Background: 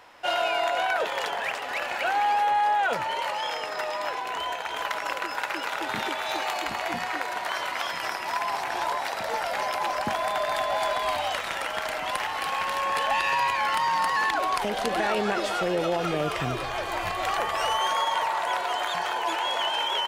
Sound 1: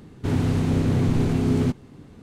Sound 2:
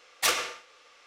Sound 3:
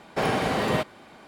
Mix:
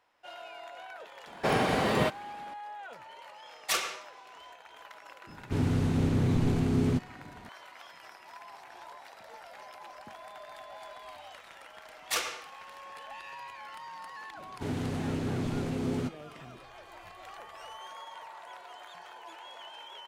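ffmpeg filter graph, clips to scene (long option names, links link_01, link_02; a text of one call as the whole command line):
ffmpeg -i bed.wav -i cue0.wav -i cue1.wav -i cue2.wav -filter_complex "[2:a]asplit=2[link_01][link_02];[1:a]asplit=2[link_03][link_04];[0:a]volume=-20dB[link_05];[link_01]aecho=1:1:5.2:0.36[link_06];[link_04]lowshelf=frequency=160:gain=-10[link_07];[3:a]atrim=end=1.27,asetpts=PTS-STARTPTS,volume=-2dB,afade=type=in:duration=0.004:curve=hsin,afade=type=out:start_time=1.266:duration=0.004:curve=hsin,adelay=1270[link_08];[link_06]atrim=end=1.06,asetpts=PTS-STARTPTS,volume=-5dB,afade=type=in:duration=0.004:curve=hsin,afade=type=out:start_time=1.056:duration=0.004:curve=hsin,adelay=3460[link_09];[link_03]atrim=end=2.22,asetpts=PTS-STARTPTS,volume=-5.5dB,afade=type=in:duration=0.004:curve=hsin,afade=type=out:start_time=2.216:duration=0.004:curve=hsin,adelay=5270[link_10];[link_02]atrim=end=1.06,asetpts=PTS-STARTPTS,volume=-6dB,afade=type=in:duration=0.004:curve=hsin,afade=type=out:start_time=1.056:duration=0.004:curve=hsin,adelay=11880[link_11];[link_07]atrim=end=2.22,asetpts=PTS-STARTPTS,volume=-7dB,afade=type=in:duration=0.004:curve=hsin,afade=type=out:start_time=2.216:duration=0.004:curve=hsin,adelay=14370[link_12];[link_05][link_08][link_09][link_10][link_11][link_12]amix=inputs=6:normalize=0" out.wav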